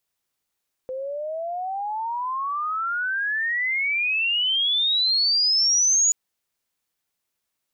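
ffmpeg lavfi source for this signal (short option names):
-f lavfi -i "aevalsrc='pow(10,(-27.5+12*t/5.23)/20)*sin(2*PI*510*5.23/log(6900/510)*(exp(log(6900/510)*t/5.23)-1))':d=5.23:s=44100"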